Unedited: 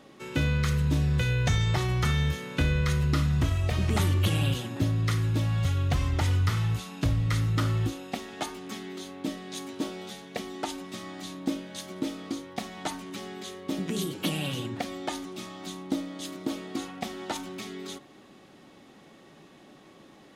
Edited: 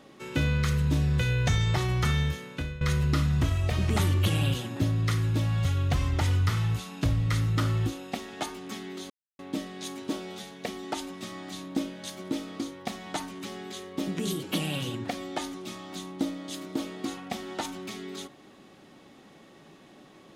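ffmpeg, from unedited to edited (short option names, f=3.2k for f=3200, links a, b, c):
-filter_complex "[0:a]asplit=3[a][b][c];[a]atrim=end=2.81,asetpts=PTS-STARTPTS,afade=t=out:st=2.17:d=0.64:silence=0.149624[d];[b]atrim=start=2.81:end=9.1,asetpts=PTS-STARTPTS,afade=t=in:d=0.004:c=hsin:silence=0.149624,afade=t=out:st=6.286:d=0.004:c=hsin,apad=pad_dur=0.29[e];[c]atrim=start=9.1,asetpts=PTS-STARTPTS,afade=t=in:d=0.004:c=hsin[f];[d][e][f]concat=n=3:v=0:a=1"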